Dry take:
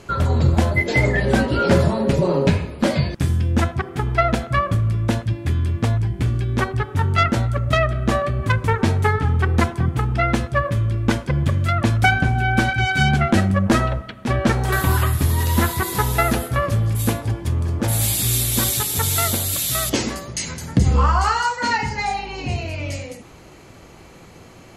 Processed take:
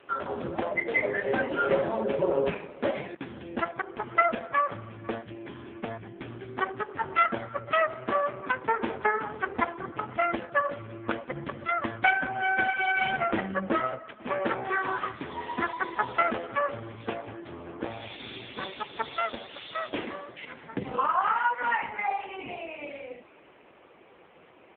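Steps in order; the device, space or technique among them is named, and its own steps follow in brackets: 20.41–21.06 s: dynamic bell 6 kHz, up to +3 dB, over -42 dBFS, Q 0.84; satellite phone (band-pass 350–3300 Hz; delay 498 ms -22.5 dB; trim -3 dB; AMR-NB 5.15 kbps 8 kHz)

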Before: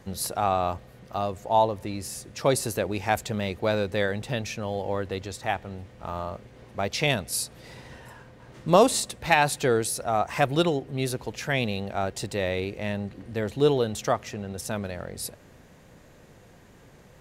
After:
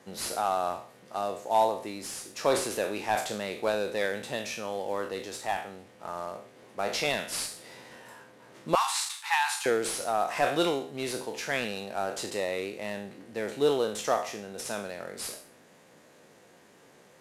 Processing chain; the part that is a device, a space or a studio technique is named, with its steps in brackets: spectral sustain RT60 0.47 s; early wireless headset (high-pass 260 Hz 12 dB/octave; CVSD coder 64 kbps); 8.75–9.66 s: steep high-pass 820 Hz 96 dB/octave; trim -3 dB

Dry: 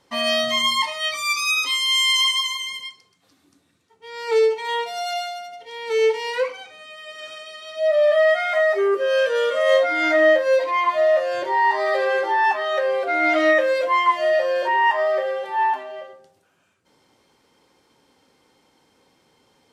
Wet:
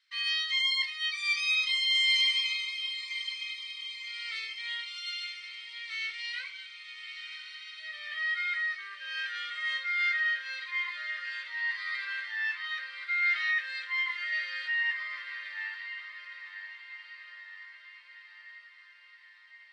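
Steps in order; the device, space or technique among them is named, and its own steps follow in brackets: inverse Chebyshev high-pass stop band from 780 Hz, stop band 40 dB; 14.32–14.83 s: comb 1.5 ms, depth 98%; television speaker (cabinet simulation 230–8500 Hz, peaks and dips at 270 Hz -10 dB, 440 Hz -5 dB, 900 Hz -6 dB, 2.2 kHz +4 dB, 4.1 kHz +8 dB, 6.8 kHz -7 dB); treble shelf 4.9 kHz -9 dB; echo that smears into a reverb 1077 ms, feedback 62%, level -11 dB; trim -6.5 dB

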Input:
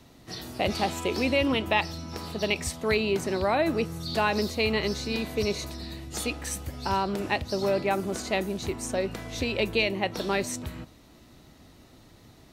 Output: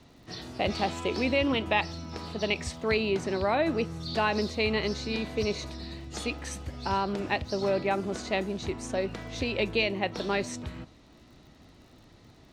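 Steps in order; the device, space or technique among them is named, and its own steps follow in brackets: lo-fi chain (low-pass 6 kHz 12 dB/octave; wow and flutter 23 cents; crackle 54 per s -49 dBFS); trim -1.5 dB

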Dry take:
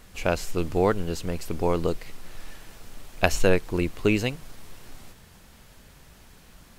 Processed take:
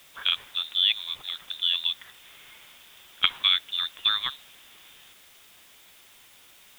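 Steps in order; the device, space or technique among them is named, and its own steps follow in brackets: scrambled radio voice (band-pass 300–2700 Hz; frequency inversion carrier 3.9 kHz; white noise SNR 25 dB)

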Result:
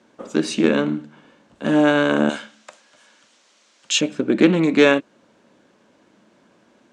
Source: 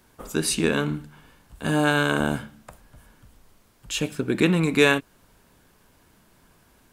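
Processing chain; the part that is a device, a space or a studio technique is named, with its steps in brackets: 2.29–4.01 s: frequency weighting ITU-R 468; full-range speaker at full volume (loudspeaker Doppler distortion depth 0.11 ms; cabinet simulation 190–6700 Hz, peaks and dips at 220 Hz +8 dB, 320 Hz +7 dB, 560 Hz +9 dB, 4.9 kHz -4 dB); trim +1 dB

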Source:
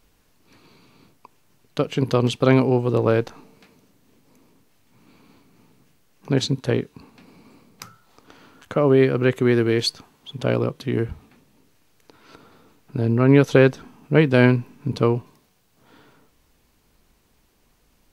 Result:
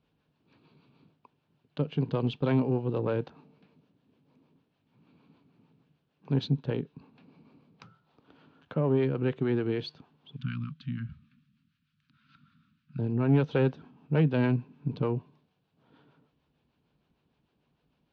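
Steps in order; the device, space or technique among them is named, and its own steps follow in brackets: 10.36–12.99 s: elliptic band-stop 230–1300 Hz, stop band 40 dB; guitar amplifier with harmonic tremolo (harmonic tremolo 6.6 Hz, depth 50%, crossover 450 Hz; saturation -11 dBFS, distortion -15 dB; cabinet simulation 77–3700 Hz, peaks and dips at 150 Hz +9 dB, 260 Hz +3 dB, 1.2 kHz -3 dB, 2 kHz -8 dB); trim -7.5 dB

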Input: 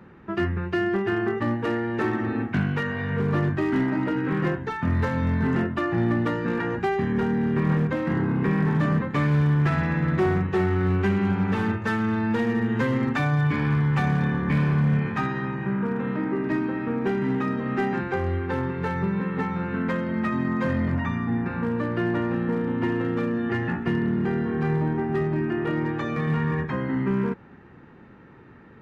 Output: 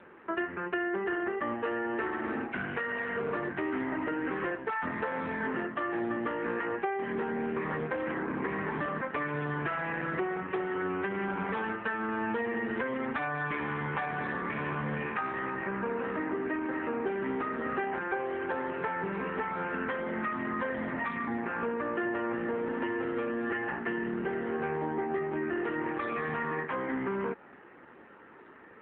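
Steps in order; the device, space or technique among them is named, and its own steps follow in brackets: voicemail (band-pass 420–3300 Hz; compression 10:1, threshold -31 dBFS, peak gain reduction 10.5 dB; trim +3.5 dB; AMR-NB 7.4 kbps 8 kHz)

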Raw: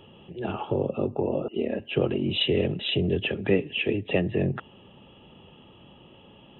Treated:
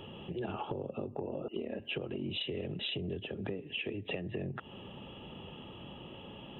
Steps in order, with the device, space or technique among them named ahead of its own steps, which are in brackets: serial compression, peaks first (compression, threshold -33 dBFS, peak gain reduction 15.5 dB; compression 2.5:1, threshold -40 dBFS, peak gain reduction 7.5 dB); 3.14–3.63 s: dynamic bell 2.2 kHz, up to -8 dB, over -58 dBFS, Q 1.2; trim +3.5 dB

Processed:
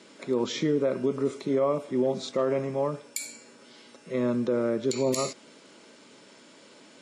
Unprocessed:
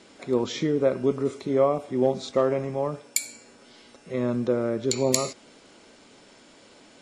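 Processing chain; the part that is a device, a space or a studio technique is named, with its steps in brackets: PA system with an anti-feedback notch (high-pass 130 Hz 24 dB/octave; Butterworth band-stop 750 Hz, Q 6.7; peak limiter -16.5 dBFS, peak gain reduction 11 dB)

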